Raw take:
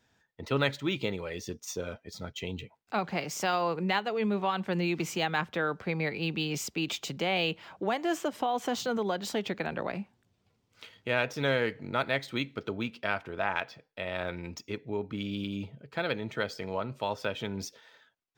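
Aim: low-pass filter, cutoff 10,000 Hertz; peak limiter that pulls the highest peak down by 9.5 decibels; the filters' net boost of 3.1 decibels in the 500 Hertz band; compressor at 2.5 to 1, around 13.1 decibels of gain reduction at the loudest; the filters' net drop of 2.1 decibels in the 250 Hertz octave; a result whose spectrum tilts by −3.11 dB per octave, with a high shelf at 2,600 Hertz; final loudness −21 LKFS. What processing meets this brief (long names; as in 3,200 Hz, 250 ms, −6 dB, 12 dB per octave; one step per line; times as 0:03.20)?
low-pass filter 10,000 Hz
parametric band 250 Hz −5 dB
parametric band 500 Hz +4.5 dB
high-shelf EQ 2,600 Hz +9 dB
downward compressor 2.5 to 1, threshold −41 dBFS
level +20.5 dB
brickwall limiter −9 dBFS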